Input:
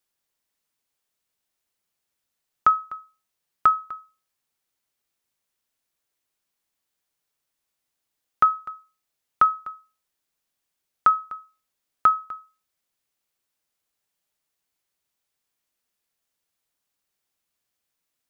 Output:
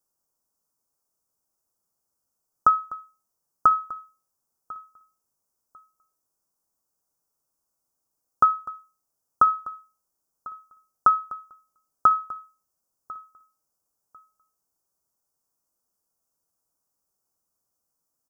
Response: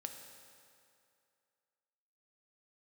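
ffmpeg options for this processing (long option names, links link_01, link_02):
-filter_complex "[0:a]asuperstop=centerf=2700:order=8:qfactor=0.7,aecho=1:1:1047|2094:0.0891|0.0196,asplit=2[link_01][link_02];[1:a]atrim=start_sample=2205,atrim=end_sample=3528[link_03];[link_02][link_03]afir=irnorm=-1:irlink=0,volume=-8.5dB[link_04];[link_01][link_04]amix=inputs=2:normalize=0"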